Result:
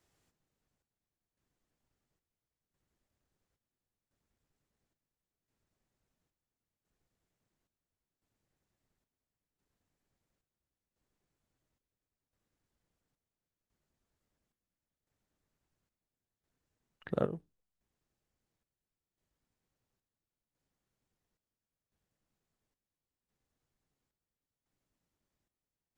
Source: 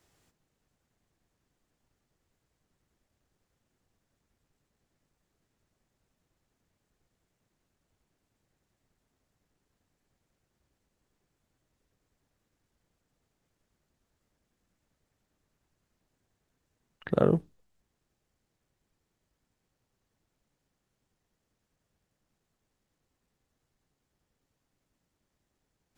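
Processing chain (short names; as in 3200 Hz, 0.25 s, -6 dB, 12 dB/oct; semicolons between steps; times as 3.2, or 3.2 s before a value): chopper 0.73 Hz, depth 65%, duty 60%; gain -7 dB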